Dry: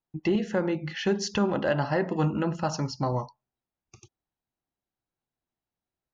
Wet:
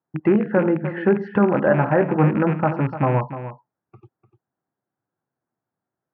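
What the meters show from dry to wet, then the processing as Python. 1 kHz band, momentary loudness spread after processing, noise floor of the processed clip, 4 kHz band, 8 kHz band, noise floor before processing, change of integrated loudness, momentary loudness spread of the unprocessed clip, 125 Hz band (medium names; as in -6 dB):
+8.0 dB, 6 LU, under -85 dBFS, under -10 dB, no reading, under -85 dBFS, +8.0 dB, 4 LU, +8.5 dB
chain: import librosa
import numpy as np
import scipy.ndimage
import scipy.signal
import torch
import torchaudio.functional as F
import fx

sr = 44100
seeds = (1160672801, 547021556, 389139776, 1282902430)

y = fx.rattle_buzz(x, sr, strikes_db=-31.0, level_db=-20.0)
y = scipy.signal.sosfilt(scipy.signal.ellip(3, 1.0, 60, [110.0, 1600.0], 'bandpass', fs=sr, output='sos'), y)
y = y + 10.0 ** (-12.0 / 20.0) * np.pad(y, (int(298 * sr / 1000.0), 0))[:len(y)]
y = y * 10.0 ** (8.5 / 20.0)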